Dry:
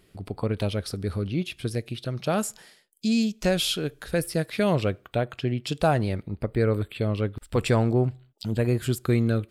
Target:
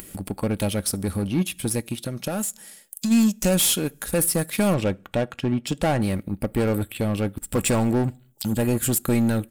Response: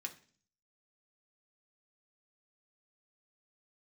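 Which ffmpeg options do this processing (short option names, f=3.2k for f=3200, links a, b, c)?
-filter_complex "[0:a]asettb=1/sr,asplit=3[a][b][c];[a]atrim=end=4.744[d];[b]atrim=start=4.74:end=6.02,asetpts=PTS-STARTPTS,afade=t=in:d=0.004:c=qsin,afade=t=out:st=1.276:d=0.004:c=qsin,aemphasis=mode=reproduction:type=50fm[e];[c]atrim=start=6.016[f];[d][e]acrossfade=d=0.004:c1=hsin:c2=qsin[g];[g][f]acrossfade=d=0.004:c1=qsin:c2=hsin,aexciter=amount=2.3:drive=9.7:freq=6.4k,asoftclip=type=tanh:threshold=-22.5dB,acompressor=mode=upward:threshold=-31dB:ratio=2.5,aeval=exprs='0.106*(cos(1*acos(clip(val(0)/0.106,-1,1)))-cos(1*PI/2))+0.00841*(cos(7*acos(clip(val(0)/0.106,-1,1)))-cos(7*PI/2))':c=same,aecho=1:1:3.6:0.31,asplit=2[h][i];[i]asuperstop=centerf=1100:order=4:qfactor=7.6[j];[1:a]atrim=start_sample=2205[k];[j][k]afir=irnorm=-1:irlink=0,volume=-14dB[l];[h][l]amix=inputs=2:normalize=0,asplit=3[m][n][o];[m]afade=t=out:st=1.95:d=0.02[p];[n]acompressor=threshold=-30dB:ratio=6,afade=t=in:st=1.95:d=0.02,afade=t=out:st=3.1:d=0.02[q];[o]afade=t=in:st=3.1:d=0.02[r];[p][q][r]amix=inputs=3:normalize=0,equalizer=f=190:t=o:w=0.62:g=6,volume=4dB"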